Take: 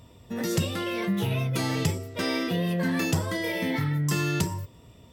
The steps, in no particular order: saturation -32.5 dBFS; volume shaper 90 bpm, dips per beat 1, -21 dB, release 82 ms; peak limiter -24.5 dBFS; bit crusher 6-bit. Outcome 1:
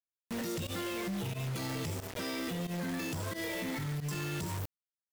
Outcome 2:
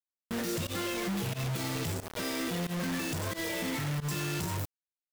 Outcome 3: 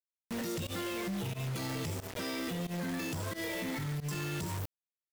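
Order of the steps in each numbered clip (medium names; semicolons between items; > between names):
bit crusher > peak limiter > volume shaper > saturation; peak limiter > saturation > bit crusher > volume shaper; bit crusher > peak limiter > saturation > volume shaper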